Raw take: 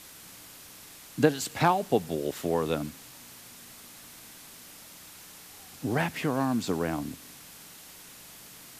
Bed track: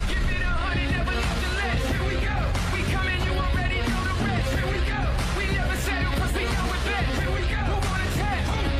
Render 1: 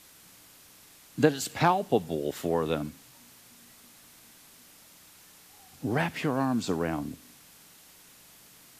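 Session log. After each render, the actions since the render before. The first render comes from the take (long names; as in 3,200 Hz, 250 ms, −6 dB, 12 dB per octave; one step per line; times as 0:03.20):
noise reduction from a noise print 6 dB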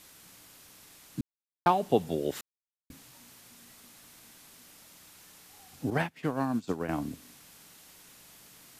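0:01.21–0:01.66: silence
0:02.41–0:02.90: silence
0:05.90–0:06.89: expander for the loud parts 2.5 to 1, over −40 dBFS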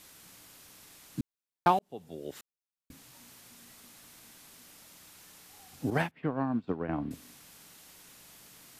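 0:01.79–0:03.21: fade in
0:06.11–0:07.11: high-frequency loss of the air 450 metres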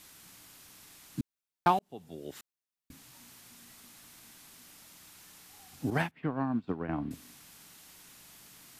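parametric band 510 Hz −4.5 dB 0.69 octaves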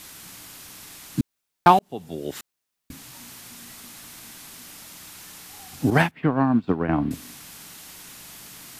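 level +11.5 dB
brickwall limiter −1 dBFS, peak gain reduction 1.5 dB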